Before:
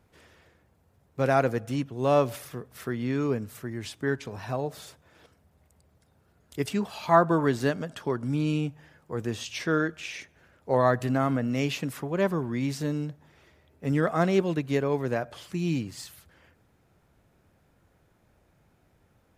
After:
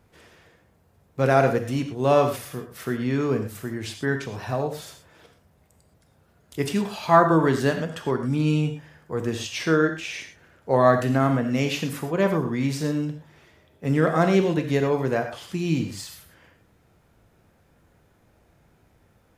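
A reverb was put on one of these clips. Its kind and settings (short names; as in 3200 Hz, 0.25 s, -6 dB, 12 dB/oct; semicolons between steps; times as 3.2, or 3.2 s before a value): non-linear reverb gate 0.14 s flat, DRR 5.5 dB; gain +3.5 dB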